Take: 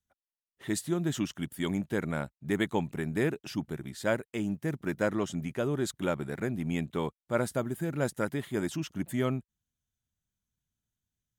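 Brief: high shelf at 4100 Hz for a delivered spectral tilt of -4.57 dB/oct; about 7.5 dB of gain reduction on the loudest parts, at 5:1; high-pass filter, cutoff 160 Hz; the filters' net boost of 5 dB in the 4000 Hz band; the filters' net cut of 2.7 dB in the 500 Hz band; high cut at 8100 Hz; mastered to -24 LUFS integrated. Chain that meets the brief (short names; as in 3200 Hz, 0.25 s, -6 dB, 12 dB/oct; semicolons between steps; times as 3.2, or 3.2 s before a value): HPF 160 Hz; LPF 8100 Hz; bell 500 Hz -3.5 dB; bell 4000 Hz +4.5 dB; high shelf 4100 Hz +4 dB; compressor 5:1, threshold -33 dBFS; gain +14.5 dB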